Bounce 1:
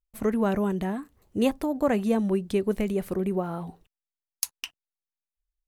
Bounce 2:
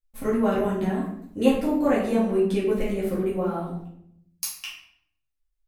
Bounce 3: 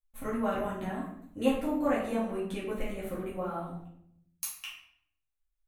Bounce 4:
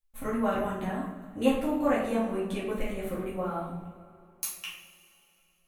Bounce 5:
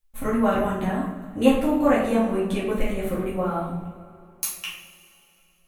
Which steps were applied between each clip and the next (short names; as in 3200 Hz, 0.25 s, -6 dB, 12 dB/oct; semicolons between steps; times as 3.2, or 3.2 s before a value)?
shoebox room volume 140 m³, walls mixed, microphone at 2.2 m; gain -6 dB
thirty-one-band EQ 200 Hz -8 dB, 400 Hz -10 dB, 1250 Hz +3 dB, 5000 Hz -11 dB; gain -5 dB
plate-style reverb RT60 3.3 s, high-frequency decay 0.8×, pre-delay 0 ms, DRR 13.5 dB; gain +2.5 dB
low shelf 220 Hz +3 dB; gain +6 dB